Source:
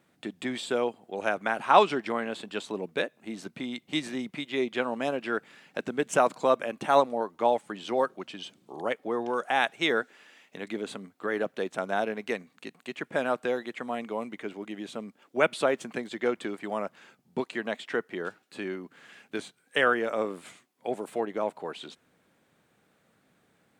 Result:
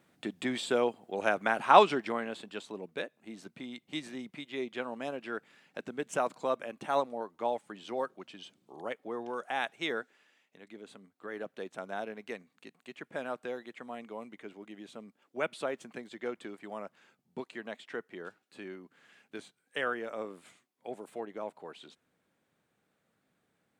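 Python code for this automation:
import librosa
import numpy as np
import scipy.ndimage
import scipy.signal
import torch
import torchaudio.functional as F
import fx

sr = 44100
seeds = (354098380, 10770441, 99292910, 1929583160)

y = fx.gain(x, sr, db=fx.line((1.78, -0.5), (2.69, -8.0), (9.91, -8.0), (10.59, -16.0), (11.57, -9.5)))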